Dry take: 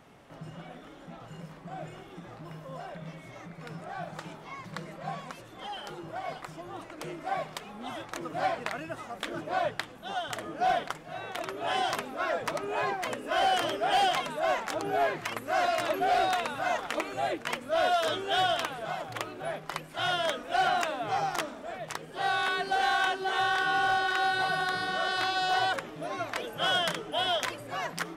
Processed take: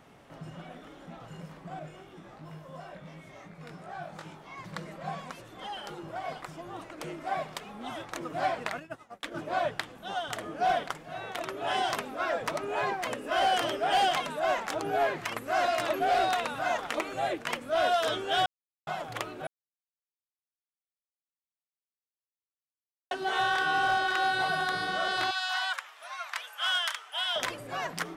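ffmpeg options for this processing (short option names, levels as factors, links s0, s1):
-filter_complex "[0:a]asettb=1/sr,asplit=3[s0][s1][s2];[s0]atrim=end=1.794[s3];[s1]atrim=start=1.79:end=4.58,asetpts=PTS-STARTPTS,afade=t=in:d=0.004:c=qsin,afade=t=out:st=2.786:d=0.004:c=qsin,flanger=delay=19:depth=2.5:speed=2.8[s4];[s2]atrim=start=4.576[s5];[s3][s4]acrossfade=d=0.004:c1=hsin:c2=qsin[s6];[s6][s5]acrossfade=d=0.004:c1=qsin:c2=hsin,asplit=3[s7][s8][s9];[s7]afade=t=out:st=8.78:d=0.02[s10];[s8]agate=range=0.0224:threshold=0.0224:ratio=3:release=100:detection=peak,afade=t=in:st=8.78:d=0.02,afade=t=out:st=9.34:d=0.02[s11];[s9]afade=t=in:st=9.34:d=0.02[s12];[s10][s11][s12]amix=inputs=3:normalize=0,asettb=1/sr,asplit=3[s13][s14][s15];[s13]atrim=end=25.314[s16];[s14]atrim=start=25.31:end=27.36,asetpts=PTS-STARTPTS,afade=t=in:d=0.004:c=qsin,afade=t=out:st=2.046:d=0.004:c=qsin,highpass=f=980:w=0.5412,highpass=f=980:w=1.3066[s17];[s15]atrim=start=27.356[s18];[s16][s17]acrossfade=d=0.004:c1=hsin:c2=qsin[s19];[s19][s18]acrossfade=d=0.004:c1=qsin:c2=hsin,asplit=5[s20][s21][s22][s23][s24];[s20]atrim=end=18.46,asetpts=PTS-STARTPTS,afade=t=out:st=18.456:d=0.004:c=hsin[s25];[s21]atrim=start=18.46:end=18.87,asetpts=PTS-STARTPTS,volume=0[s26];[s22]atrim=start=18.87:end=19.47,asetpts=PTS-STARTPTS,afade=t=in:d=0.004:c=hsin,afade=t=out:st=0.596:d=0.004:c=hsin[s27];[s23]atrim=start=19.47:end=23.11,asetpts=PTS-STARTPTS,volume=0[s28];[s24]atrim=start=23.11,asetpts=PTS-STARTPTS,afade=t=in:d=0.004:c=hsin[s29];[s25][s26][s27][s28][s29]concat=n=5:v=0:a=1"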